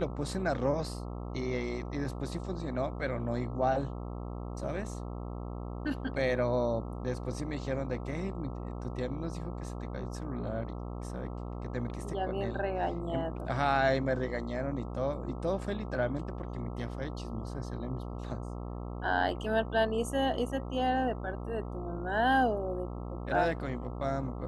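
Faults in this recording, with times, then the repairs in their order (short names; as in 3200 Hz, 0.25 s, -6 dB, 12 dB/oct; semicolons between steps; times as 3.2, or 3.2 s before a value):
buzz 60 Hz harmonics 22 -39 dBFS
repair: de-hum 60 Hz, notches 22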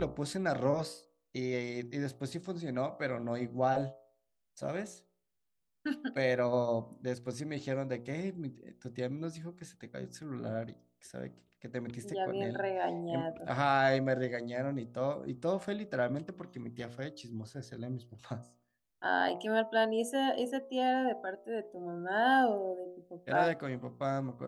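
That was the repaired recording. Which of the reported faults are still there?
none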